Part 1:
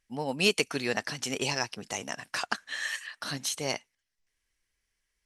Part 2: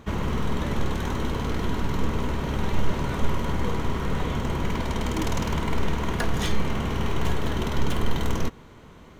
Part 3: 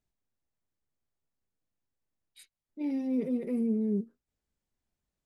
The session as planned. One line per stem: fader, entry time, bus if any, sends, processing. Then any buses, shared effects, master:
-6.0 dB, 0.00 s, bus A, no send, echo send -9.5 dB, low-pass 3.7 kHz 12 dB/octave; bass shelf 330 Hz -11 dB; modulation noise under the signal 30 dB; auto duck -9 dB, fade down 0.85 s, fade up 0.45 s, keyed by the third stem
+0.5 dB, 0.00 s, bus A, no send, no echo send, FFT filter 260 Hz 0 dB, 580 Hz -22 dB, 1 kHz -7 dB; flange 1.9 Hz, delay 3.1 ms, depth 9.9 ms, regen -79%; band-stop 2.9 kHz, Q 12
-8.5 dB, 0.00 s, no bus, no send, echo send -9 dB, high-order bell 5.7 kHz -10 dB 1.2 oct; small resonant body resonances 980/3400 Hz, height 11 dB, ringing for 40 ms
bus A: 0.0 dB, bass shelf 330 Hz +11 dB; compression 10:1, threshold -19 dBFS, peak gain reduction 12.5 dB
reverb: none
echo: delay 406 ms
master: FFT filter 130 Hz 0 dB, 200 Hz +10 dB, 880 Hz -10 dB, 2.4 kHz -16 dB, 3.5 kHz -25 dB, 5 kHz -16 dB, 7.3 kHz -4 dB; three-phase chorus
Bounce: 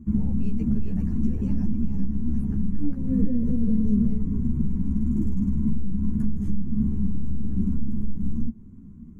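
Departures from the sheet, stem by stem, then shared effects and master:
stem 2: missing band-stop 2.9 kHz, Q 12; stem 3 -8.5 dB -> -0.5 dB

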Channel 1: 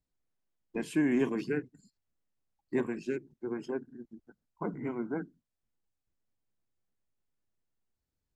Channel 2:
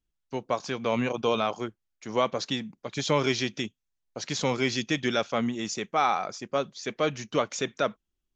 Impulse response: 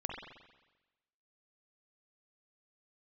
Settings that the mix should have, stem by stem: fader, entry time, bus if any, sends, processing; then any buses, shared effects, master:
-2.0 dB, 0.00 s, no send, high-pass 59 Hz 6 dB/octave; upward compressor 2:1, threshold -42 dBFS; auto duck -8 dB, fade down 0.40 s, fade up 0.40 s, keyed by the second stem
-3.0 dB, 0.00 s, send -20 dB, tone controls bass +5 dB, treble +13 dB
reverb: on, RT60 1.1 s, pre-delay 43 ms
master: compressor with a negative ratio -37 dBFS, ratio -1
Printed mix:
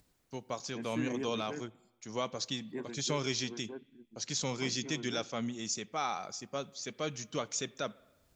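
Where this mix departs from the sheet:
stem 2 -3.0 dB -> -11.5 dB; master: missing compressor with a negative ratio -37 dBFS, ratio -1

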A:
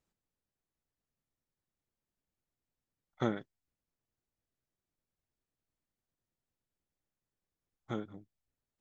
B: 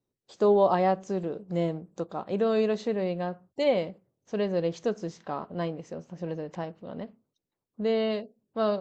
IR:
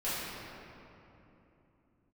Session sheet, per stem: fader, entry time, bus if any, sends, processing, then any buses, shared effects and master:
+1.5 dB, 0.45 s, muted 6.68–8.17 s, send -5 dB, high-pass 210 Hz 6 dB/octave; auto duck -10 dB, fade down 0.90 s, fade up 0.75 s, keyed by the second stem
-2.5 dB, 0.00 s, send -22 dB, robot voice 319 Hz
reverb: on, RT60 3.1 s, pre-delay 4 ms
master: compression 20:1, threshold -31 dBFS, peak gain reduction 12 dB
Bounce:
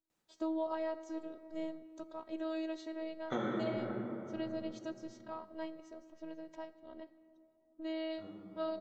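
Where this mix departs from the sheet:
stem A: entry 0.45 s -> 0.10 s; stem B -2.5 dB -> -9.0 dB

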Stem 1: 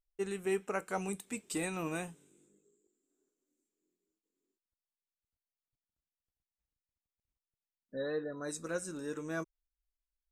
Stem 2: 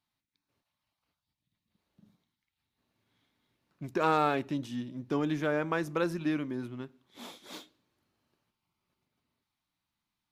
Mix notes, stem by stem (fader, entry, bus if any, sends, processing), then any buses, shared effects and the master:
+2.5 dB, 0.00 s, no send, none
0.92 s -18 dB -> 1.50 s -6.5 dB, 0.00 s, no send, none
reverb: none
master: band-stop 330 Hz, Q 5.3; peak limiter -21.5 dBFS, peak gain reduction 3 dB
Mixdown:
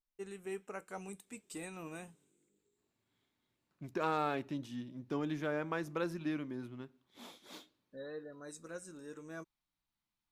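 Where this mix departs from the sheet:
stem 1 +2.5 dB -> -9.0 dB; master: missing band-stop 330 Hz, Q 5.3

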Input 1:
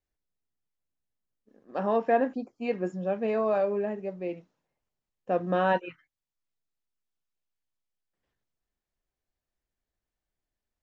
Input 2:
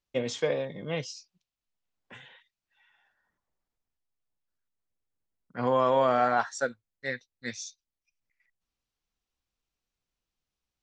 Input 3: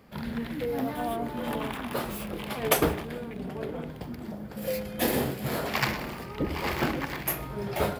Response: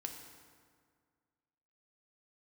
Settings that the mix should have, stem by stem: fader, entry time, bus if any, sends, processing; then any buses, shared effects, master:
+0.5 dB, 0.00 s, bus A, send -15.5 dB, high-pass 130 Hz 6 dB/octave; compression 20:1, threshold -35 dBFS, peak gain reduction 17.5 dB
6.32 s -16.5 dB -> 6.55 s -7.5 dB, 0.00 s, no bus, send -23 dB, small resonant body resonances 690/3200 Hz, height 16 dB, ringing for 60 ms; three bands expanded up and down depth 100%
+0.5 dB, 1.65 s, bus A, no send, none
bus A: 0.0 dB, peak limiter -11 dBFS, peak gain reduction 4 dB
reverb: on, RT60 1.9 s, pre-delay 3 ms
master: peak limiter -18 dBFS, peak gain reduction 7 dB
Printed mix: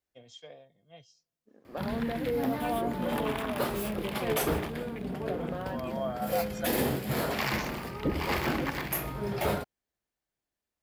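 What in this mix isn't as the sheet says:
stem 2 -16.5 dB -> -23.0 dB; reverb return -7.0 dB

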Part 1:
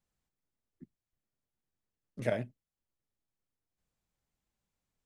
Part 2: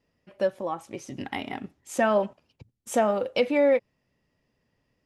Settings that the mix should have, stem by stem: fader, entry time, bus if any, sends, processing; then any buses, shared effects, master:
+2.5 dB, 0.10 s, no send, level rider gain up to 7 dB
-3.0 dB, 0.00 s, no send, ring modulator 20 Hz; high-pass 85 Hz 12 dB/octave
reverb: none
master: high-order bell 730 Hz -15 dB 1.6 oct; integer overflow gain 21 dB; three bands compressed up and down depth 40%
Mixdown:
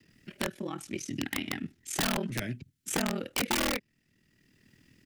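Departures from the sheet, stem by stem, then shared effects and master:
stem 1: missing level rider gain up to 7 dB; stem 2 -3.0 dB -> +4.0 dB

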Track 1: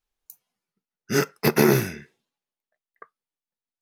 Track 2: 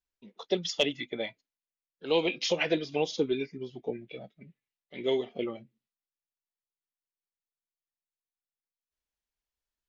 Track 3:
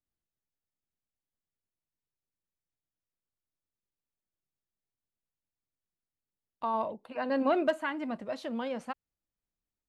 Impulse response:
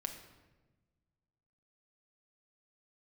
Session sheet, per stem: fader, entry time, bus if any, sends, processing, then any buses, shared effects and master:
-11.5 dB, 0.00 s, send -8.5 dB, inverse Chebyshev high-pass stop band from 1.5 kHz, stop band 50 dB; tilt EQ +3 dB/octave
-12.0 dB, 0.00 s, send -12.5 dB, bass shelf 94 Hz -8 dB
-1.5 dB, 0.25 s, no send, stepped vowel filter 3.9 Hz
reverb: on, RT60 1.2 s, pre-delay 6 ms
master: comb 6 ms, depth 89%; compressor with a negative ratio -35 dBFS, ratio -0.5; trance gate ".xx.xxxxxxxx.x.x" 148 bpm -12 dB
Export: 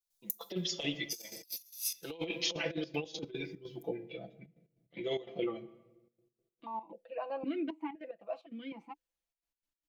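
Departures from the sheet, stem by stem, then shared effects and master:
stem 2: missing bass shelf 94 Hz -8 dB; stem 3: entry 0.25 s -> 0.00 s; reverb return +9.0 dB

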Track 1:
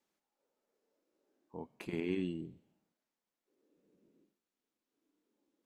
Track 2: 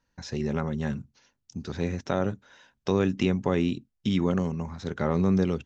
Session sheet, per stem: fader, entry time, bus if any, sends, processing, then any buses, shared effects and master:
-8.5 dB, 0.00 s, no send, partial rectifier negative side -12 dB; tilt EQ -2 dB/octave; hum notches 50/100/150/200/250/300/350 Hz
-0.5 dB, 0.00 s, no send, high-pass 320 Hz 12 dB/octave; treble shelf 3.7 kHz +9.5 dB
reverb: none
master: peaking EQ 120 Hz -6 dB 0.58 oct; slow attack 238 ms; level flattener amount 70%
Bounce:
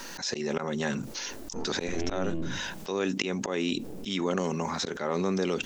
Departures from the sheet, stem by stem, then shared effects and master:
stem 1 -8.5 dB -> +3.0 dB; master: missing peaking EQ 120 Hz -6 dB 0.58 oct

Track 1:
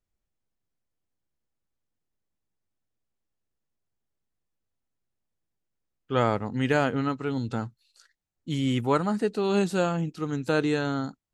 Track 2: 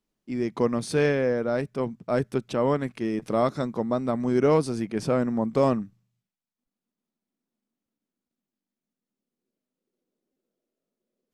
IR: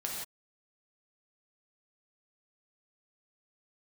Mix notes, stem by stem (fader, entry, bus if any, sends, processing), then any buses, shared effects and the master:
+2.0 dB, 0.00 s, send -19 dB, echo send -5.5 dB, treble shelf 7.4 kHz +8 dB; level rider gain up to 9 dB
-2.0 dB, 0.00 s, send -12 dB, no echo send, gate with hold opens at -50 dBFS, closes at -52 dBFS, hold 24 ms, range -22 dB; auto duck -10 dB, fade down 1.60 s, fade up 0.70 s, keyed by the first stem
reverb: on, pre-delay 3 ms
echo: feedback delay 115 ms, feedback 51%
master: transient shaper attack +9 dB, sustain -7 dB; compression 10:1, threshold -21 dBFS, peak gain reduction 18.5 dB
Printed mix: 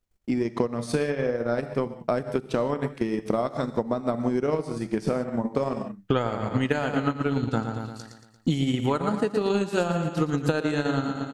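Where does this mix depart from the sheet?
stem 1: missing treble shelf 7.4 kHz +8 dB; reverb return +8.5 dB

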